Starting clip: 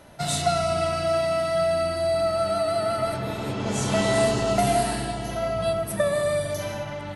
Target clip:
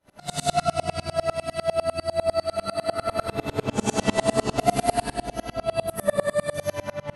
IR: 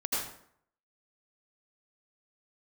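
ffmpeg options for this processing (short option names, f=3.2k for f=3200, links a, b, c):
-filter_complex "[0:a]asettb=1/sr,asplit=3[a][b][c];[a]atrim=end=2.944[d];[b]atrim=start=2.94:end=3.96,asetpts=PTS-STARTPTS,afade=t=in:d=0.004:c=qsin,afade=t=out:st=1.016:d=0.004:c=qsin,asplit=2[e][f];[f]adelay=49,volume=-2.5dB[g];[e][g]amix=inputs=2:normalize=0,atrim=end_sample=44982[h];[c]atrim=start=3.956[i];[d][h]acrossfade=d=0.004:c1=hsin:c2=qsin[j];[j][i]acrossfade=d=0.004:c1=qsin:c2=hsin[k];[1:a]atrim=start_sample=2205[l];[k][l]afir=irnorm=-1:irlink=0,aeval=exprs='val(0)*pow(10,-30*if(lt(mod(-10*n/s,1),2*abs(-10)/1000),1-mod(-10*n/s,1)/(2*abs(-10)/1000),(mod(-10*n/s,1)-2*abs(-10)/1000)/(1-2*abs(-10)/1000))/20)':c=same"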